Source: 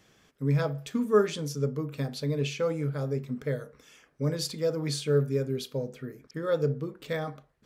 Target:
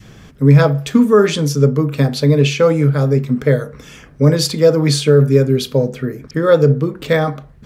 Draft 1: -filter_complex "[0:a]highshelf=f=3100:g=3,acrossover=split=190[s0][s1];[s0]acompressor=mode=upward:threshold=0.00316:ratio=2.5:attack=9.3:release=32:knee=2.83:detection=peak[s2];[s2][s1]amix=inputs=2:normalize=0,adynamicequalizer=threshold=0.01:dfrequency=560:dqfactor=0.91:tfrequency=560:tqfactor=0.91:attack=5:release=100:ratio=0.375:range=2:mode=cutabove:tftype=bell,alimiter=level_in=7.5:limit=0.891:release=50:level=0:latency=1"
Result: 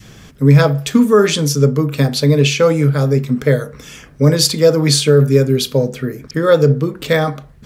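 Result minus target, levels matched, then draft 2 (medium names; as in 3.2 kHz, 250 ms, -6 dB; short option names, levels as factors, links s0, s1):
8 kHz band +5.5 dB
-filter_complex "[0:a]highshelf=f=3100:g=-4,acrossover=split=190[s0][s1];[s0]acompressor=mode=upward:threshold=0.00316:ratio=2.5:attack=9.3:release=32:knee=2.83:detection=peak[s2];[s2][s1]amix=inputs=2:normalize=0,adynamicequalizer=threshold=0.01:dfrequency=560:dqfactor=0.91:tfrequency=560:tqfactor=0.91:attack=5:release=100:ratio=0.375:range=2:mode=cutabove:tftype=bell,alimiter=level_in=7.5:limit=0.891:release=50:level=0:latency=1"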